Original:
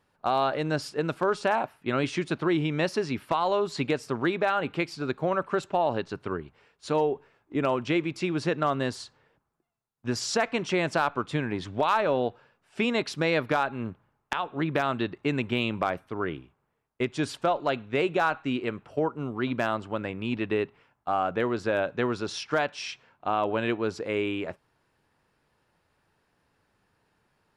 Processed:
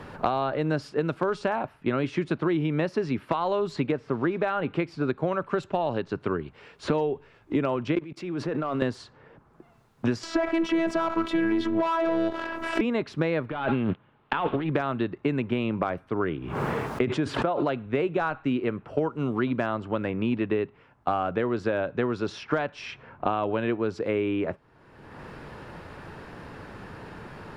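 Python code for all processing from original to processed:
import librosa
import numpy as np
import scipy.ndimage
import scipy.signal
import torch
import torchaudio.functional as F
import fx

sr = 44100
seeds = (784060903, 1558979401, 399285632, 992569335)

y = fx.chain(x, sr, fx.crossing_spikes(level_db=-29.5),
    fx.lowpass(hz=1900.0, slope=12), at=(3.92, 4.38))
y = fx.chain(y, sr, fx.highpass(hz=160.0, slope=12),
    fx.leveller(passes=1),
    fx.level_steps(step_db=20), at=(7.95, 8.82))
y = fx.chain(y, sr, fx.leveller(passes=2),
    fx.robotise(hz=330.0),
    fx.env_flatten(amount_pct=70), at=(10.23, 12.81))
y = fx.chain(y, sr, fx.leveller(passes=2),
    fx.high_shelf_res(hz=4600.0, db=-11.5, q=3.0),
    fx.over_compress(threshold_db=-30.0, ratio=-1.0), at=(13.5, 14.7))
y = fx.chain(y, sr, fx.highpass(hz=53.0, slope=12),
    fx.pre_swell(db_per_s=34.0), at=(16.37, 17.86))
y = fx.lowpass(y, sr, hz=1400.0, slope=6)
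y = fx.peak_eq(y, sr, hz=780.0, db=-2.5, octaves=0.77)
y = fx.band_squash(y, sr, depth_pct=100)
y = y * 10.0 ** (1.0 / 20.0)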